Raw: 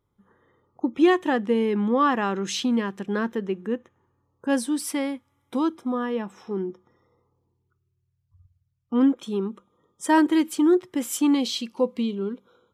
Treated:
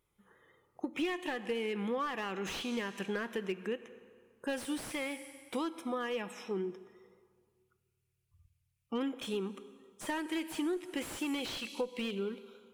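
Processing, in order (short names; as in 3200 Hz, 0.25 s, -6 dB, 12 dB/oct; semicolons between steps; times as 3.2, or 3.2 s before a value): fifteen-band EQ 100 Hz -10 dB, 250 Hz -8 dB, 1000 Hz -3 dB, 2500 Hz +11 dB, 10000 Hz +6 dB; vibrato 5.9 Hz 40 cents; in parallel at -4 dB: one-sided clip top -21.5 dBFS; on the sum: plate-style reverb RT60 1.9 s, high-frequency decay 0.8×, DRR 16 dB; compressor 8:1, threshold -25 dBFS, peak gain reduction 14 dB; high shelf 6200 Hz +7 dB; slew limiter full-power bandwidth 80 Hz; gain -6.5 dB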